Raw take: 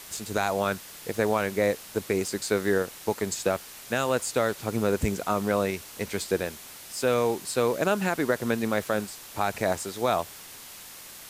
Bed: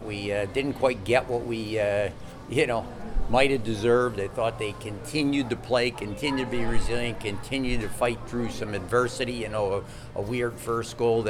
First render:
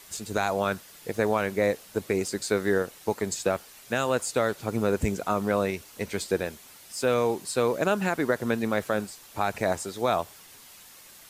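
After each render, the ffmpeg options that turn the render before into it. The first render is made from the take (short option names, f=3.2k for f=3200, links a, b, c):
-af "afftdn=nr=7:nf=-45"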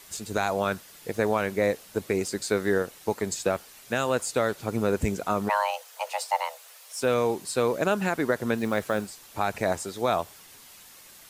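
-filter_complex "[0:a]asplit=3[a][b][c];[a]afade=t=out:st=5.48:d=0.02[d];[b]afreqshift=420,afade=t=in:st=5.48:d=0.02,afade=t=out:st=7:d=0.02[e];[c]afade=t=in:st=7:d=0.02[f];[d][e][f]amix=inputs=3:normalize=0,asettb=1/sr,asplit=3[g][h][i];[g]atrim=end=8.574[j];[h]atrim=start=8.57:end=9.09,asetpts=PTS-STARTPTS,afade=t=in:d=0.004:c=qsin,afade=t=out:st=0.516:d=0.004:c=qsin,acrusher=bits=7:mode=log:mix=0:aa=0.000001[k];[i]atrim=start=9.086[l];[j][k]acrossfade=d=0.004:c1=hsin:c2=qsin[m];[m][l]acrossfade=d=0.004:c1=qsin:c2=hsin"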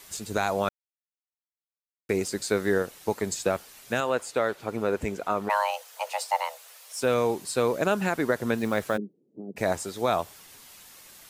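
-filter_complex "[0:a]asettb=1/sr,asplit=3[a][b][c];[a]atrim=end=4.004[d];[b]atrim=start=4:end=5.5,asetpts=PTS-STARTPTS,afade=t=in:d=0.004:c=qsin,afade=t=out:st=1.496:d=0.004:c=qsin,bass=f=250:g=-8,treble=f=4k:g=-8[e];[c]atrim=start=5.496[f];[d][e]acrossfade=d=0.004:c1=hsin:c2=qsin[g];[g][f]acrossfade=d=0.004:c1=qsin:c2=hsin,asplit=3[h][i][j];[h]afade=t=out:st=8.96:d=0.02[k];[i]asuperpass=centerf=260:order=8:qfactor=0.95,afade=t=in:st=8.96:d=0.02,afade=t=out:st=9.56:d=0.02[l];[j]afade=t=in:st=9.56:d=0.02[m];[k][l][m]amix=inputs=3:normalize=0,asplit=3[n][o][p];[n]atrim=end=0.69,asetpts=PTS-STARTPTS,afade=t=out:st=0.686:d=0.004:c=hsin[q];[o]atrim=start=0.69:end=2.09,asetpts=PTS-STARTPTS,volume=0[r];[p]atrim=start=2.09,asetpts=PTS-STARTPTS,afade=t=in:d=0.004:c=hsin[s];[q][r][s]concat=n=3:v=0:a=1"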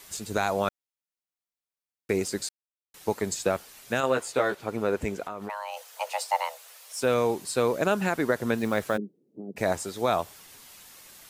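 -filter_complex "[0:a]asettb=1/sr,asplit=3[a][b][c];[a]atrim=end=4.024[d];[b]atrim=start=4.02:end=4.55,asetpts=PTS-STARTPTS,afade=t=in:d=0.004:c=qsin,afade=t=out:st=0.526:d=0.004:c=qsin,asplit=2[e][f];[f]adelay=15,volume=-3dB[g];[e][g]amix=inputs=2:normalize=0,atrim=end_sample=23373[h];[c]atrim=start=4.546[i];[d][h]acrossfade=d=0.004:c1=hsin:c2=qsin[j];[j][i]acrossfade=d=0.004:c1=qsin:c2=hsin,asettb=1/sr,asplit=3[k][l][m];[k]atrim=end=5.234[n];[l]atrim=start=5.23:end=5.77,asetpts=PTS-STARTPTS,afade=t=in:d=0.004:c=qsin,afade=t=out:st=0.536:d=0.004:c=qsin,acompressor=threshold=-31dB:ratio=6:attack=3.2:release=140:knee=1:detection=peak[o];[m]atrim=start=5.766[p];[n][o]acrossfade=d=0.004:c1=hsin:c2=qsin[q];[q][p]acrossfade=d=0.004:c1=qsin:c2=hsin,asplit=3[r][s][t];[r]atrim=end=2.49,asetpts=PTS-STARTPTS,afade=t=out:st=2.486:d=0.004:c=hsin[u];[s]atrim=start=2.49:end=2.94,asetpts=PTS-STARTPTS,volume=0[v];[t]atrim=start=2.94,asetpts=PTS-STARTPTS,afade=t=in:d=0.004:c=hsin[w];[u][v][w]concat=n=3:v=0:a=1"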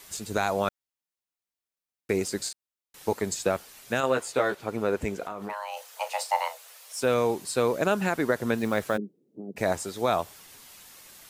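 -filter_complex "[0:a]asettb=1/sr,asplit=3[a][b][c];[a]atrim=end=2.414[d];[b]atrim=start=2.41:end=3.13,asetpts=PTS-STARTPTS,afade=t=in:d=0.004:c=qsin,afade=t=out:st=0.716:d=0.004:c=qsin,asplit=2[e][f];[f]adelay=40,volume=-5dB[g];[e][g]amix=inputs=2:normalize=0,atrim=end_sample=31752[h];[c]atrim=start=3.126[i];[d][h]acrossfade=d=0.004:c1=hsin:c2=qsin[j];[j][i]acrossfade=d=0.004:c1=qsin:c2=hsin,asettb=1/sr,asplit=3[k][l][m];[k]atrim=end=5.194[n];[l]atrim=start=5.19:end=6.55,asetpts=PTS-STARTPTS,afade=t=in:d=0.004:c=qsin,afade=t=out:st=1.356:d=0.004:c=qsin,asplit=2[o][p];[p]adelay=35,volume=-11dB[q];[o][q]amix=inputs=2:normalize=0,atrim=end_sample=59976[r];[m]atrim=start=6.546[s];[n][r]acrossfade=d=0.004:c1=hsin:c2=qsin[t];[t][s]acrossfade=d=0.004:c1=qsin:c2=hsin"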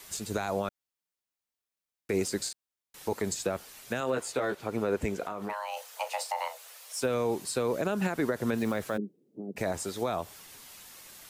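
-filter_complex "[0:a]alimiter=limit=-17dB:level=0:latency=1:release=37,acrossover=split=450[a][b];[b]acompressor=threshold=-31dB:ratio=3[c];[a][c]amix=inputs=2:normalize=0"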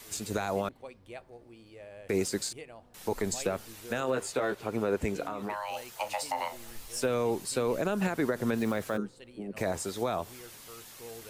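-filter_complex "[1:a]volume=-23dB[a];[0:a][a]amix=inputs=2:normalize=0"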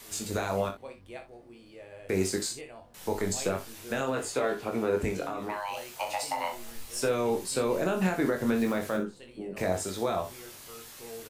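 -filter_complex "[0:a]asplit=2[a][b];[b]adelay=22,volume=-5dB[c];[a][c]amix=inputs=2:normalize=0,aecho=1:1:42|61:0.282|0.251"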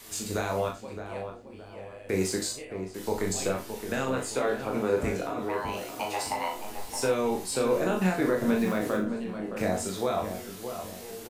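-filter_complex "[0:a]asplit=2[a][b];[b]adelay=38,volume=-6dB[c];[a][c]amix=inputs=2:normalize=0,asplit=2[d][e];[e]adelay=617,lowpass=f=1.5k:p=1,volume=-8dB,asplit=2[f][g];[g]adelay=617,lowpass=f=1.5k:p=1,volume=0.43,asplit=2[h][i];[i]adelay=617,lowpass=f=1.5k:p=1,volume=0.43,asplit=2[j][k];[k]adelay=617,lowpass=f=1.5k:p=1,volume=0.43,asplit=2[l][m];[m]adelay=617,lowpass=f=1.5k:p=1,volume=0.43[n];[d][f][h][j][l][n]amix=inputs=6:normalize=0"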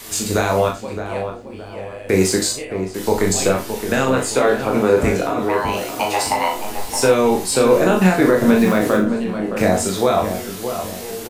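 -af "volume=12dB,alimiter=limit=-3dB:level=0:latency=1"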